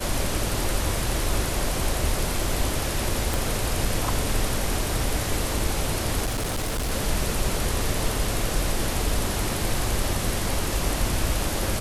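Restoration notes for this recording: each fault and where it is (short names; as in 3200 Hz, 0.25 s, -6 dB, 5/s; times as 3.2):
3.34 pop
6.25–6.92 clipped -23 dBFS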